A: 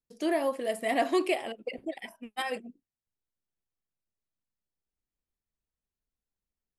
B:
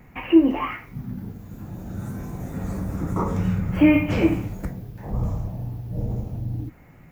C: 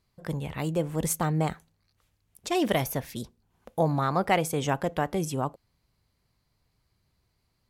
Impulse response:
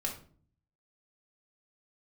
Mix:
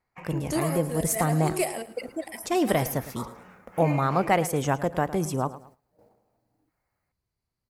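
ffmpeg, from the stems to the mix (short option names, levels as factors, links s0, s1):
-filter_complex "[0:a]aexciter=amount=5.2:drive=3.7:freq=4700,aeval=exprs='0.316*sin(PI/2*1.78*val(0)/0.316)':c=same,adelay=300,volume=0.501,asplit=2[s0][s1];[s1]volume=0.15[s2];[1:a]highpass=730,highshelf=f=2300:g=-4.5,adynamicsmooth=sensitivity=7.5:basefreq=4300,volume=0.422[s3];[2:a]volume=1.26,asplit=3[s4][s5][s6];[s5]volume=0.168[s7];[s6]apad=whole_len=312614[s8];[s0][s8]sidechaincompress=threshold=0.0282:ratio=8:attack=30:release=158[s9];[s2][s7]amix=inputs=2:normalize=0,aecho=0:1:109|218|327|436|545:1|0.33|0.109|0.0359|0.0119[s10];[s9][s3][s4][s10]amix=inputs=4:normalize=0,equalizer=f=3300:w=1.5:g=-6,agate=range=0.224:threshold=0.00251:ratio=16:detection=peak"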